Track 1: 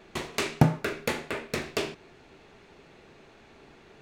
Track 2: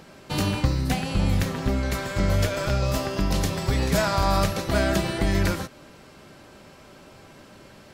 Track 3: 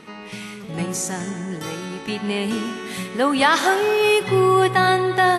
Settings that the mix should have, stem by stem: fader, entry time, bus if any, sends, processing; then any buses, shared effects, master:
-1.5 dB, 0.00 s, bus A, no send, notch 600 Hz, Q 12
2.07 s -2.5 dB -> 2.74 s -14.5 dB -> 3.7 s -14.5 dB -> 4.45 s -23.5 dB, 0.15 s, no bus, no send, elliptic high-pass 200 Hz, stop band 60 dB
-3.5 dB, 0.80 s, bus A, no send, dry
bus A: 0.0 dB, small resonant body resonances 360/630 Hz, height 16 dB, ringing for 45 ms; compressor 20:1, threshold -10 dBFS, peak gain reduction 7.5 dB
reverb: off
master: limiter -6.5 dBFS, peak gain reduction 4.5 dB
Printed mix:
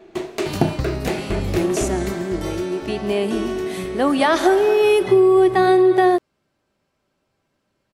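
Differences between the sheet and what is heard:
stem 2: missing elliptic high-pass 200 Hz, stop band 60 dB; master: missing limiter -6.5 dBFS, peak gain reduction 4.5 dB

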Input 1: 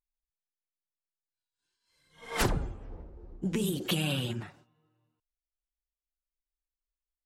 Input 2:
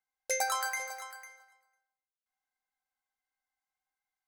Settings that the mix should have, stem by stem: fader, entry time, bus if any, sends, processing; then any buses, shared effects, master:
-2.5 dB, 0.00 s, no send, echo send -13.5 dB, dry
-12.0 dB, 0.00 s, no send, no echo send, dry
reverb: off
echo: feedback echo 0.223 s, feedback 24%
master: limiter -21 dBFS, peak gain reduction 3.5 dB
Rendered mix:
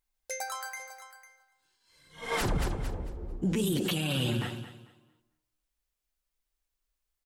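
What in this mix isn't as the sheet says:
stem 1 -2.5 dB -> +8.5 dB; stem 2 -12.0 dB -> -5.5 dB

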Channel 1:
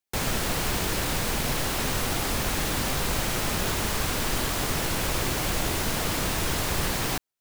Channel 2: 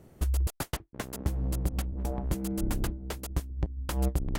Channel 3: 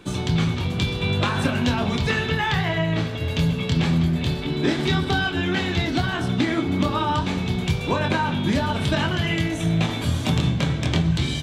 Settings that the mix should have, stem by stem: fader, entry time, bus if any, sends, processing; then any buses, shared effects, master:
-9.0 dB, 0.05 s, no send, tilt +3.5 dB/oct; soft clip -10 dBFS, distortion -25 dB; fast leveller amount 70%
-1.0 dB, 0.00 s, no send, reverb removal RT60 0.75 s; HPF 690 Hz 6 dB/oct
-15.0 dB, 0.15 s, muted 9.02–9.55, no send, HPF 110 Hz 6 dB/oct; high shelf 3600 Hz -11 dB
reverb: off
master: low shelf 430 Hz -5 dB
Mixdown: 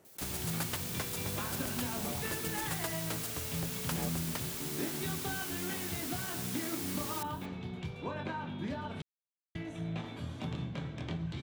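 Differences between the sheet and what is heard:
stem 1 -9.0 dB -> -20.0 dB; master: missing low shelf 430 Hz -5 dB

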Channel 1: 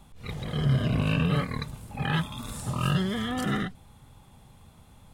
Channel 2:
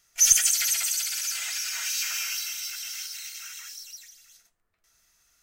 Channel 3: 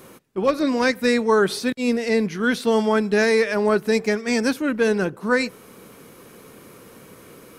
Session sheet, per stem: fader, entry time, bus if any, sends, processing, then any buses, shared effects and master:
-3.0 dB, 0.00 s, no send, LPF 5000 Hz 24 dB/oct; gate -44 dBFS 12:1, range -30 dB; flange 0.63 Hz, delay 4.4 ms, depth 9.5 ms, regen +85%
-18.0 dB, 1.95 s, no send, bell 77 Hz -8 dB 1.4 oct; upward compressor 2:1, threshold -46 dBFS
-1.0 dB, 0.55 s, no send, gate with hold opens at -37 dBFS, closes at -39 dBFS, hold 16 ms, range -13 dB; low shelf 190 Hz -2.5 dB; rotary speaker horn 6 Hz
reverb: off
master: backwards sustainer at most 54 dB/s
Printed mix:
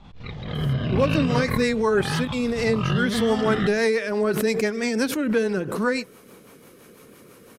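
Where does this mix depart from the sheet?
stem 1 -3.0 dB -> +4.5 dB; stem 2: muted; stem 3: missing gate with hold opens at -37 dBFS, closes at -39 dBFS, hold 16 ms, range -13 dB

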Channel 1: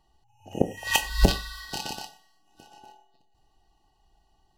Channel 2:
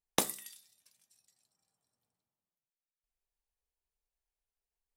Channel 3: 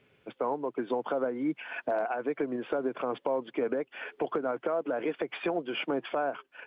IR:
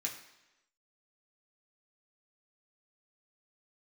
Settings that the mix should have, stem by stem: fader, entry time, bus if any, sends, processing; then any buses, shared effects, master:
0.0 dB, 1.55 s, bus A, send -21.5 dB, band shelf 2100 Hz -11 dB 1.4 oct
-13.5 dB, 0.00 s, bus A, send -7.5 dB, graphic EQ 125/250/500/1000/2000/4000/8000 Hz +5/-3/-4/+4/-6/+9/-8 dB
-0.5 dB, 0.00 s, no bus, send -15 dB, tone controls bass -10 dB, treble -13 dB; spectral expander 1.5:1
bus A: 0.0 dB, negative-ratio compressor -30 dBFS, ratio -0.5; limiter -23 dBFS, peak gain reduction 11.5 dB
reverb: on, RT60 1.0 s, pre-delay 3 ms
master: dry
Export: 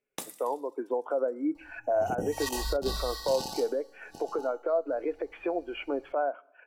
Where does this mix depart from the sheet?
stem 1: send off; stem 2: missing graphic EQ 125/250/500/1000/2000/4000/8000 Hz +5/-3/-4/+4/-6/+9/-8 dB

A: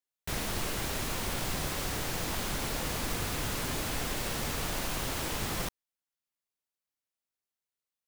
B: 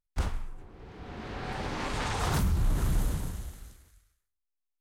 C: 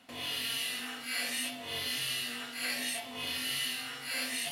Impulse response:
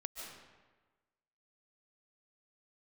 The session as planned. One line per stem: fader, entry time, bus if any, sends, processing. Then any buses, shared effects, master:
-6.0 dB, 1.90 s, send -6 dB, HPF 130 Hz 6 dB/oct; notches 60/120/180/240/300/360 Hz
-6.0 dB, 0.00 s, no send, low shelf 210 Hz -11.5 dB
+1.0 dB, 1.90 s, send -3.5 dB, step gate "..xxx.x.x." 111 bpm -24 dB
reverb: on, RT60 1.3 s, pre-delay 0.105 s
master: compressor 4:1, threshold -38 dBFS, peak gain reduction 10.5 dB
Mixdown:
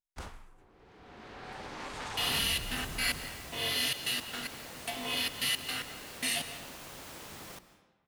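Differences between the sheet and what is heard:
stem A -6.0 dB -> -14.0 dB; master: missing compressor 4:1, threshold -38 dBFS, peak gain reduction 10.5 dB

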